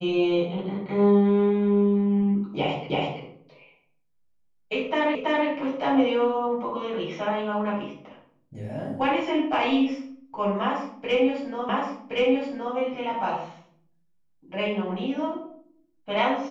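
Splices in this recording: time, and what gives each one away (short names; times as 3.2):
2.9 repeat of the last 0.33 s
5.15 repeat of the last 0.33 s
11.69 repeat of the last 1.07 s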